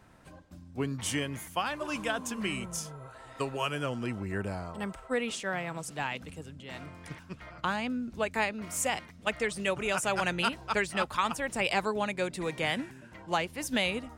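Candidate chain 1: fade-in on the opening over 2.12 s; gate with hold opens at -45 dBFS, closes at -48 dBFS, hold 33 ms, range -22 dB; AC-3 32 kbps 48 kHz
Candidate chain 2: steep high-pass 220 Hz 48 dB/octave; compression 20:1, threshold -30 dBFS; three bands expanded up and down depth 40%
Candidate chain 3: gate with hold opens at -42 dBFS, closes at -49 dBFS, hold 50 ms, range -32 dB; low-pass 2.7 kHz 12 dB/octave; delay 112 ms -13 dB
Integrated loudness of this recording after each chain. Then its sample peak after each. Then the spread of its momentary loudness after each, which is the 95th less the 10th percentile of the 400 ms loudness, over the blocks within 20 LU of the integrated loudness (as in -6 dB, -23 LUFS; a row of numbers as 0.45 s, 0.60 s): -32.5 LUFS, -36.0 LUFS, -33.0 LUFS; -13.5 dBFS, -19.0 dBFS, -14.5 dBFS; 15 LU, 15 LU, 15 LU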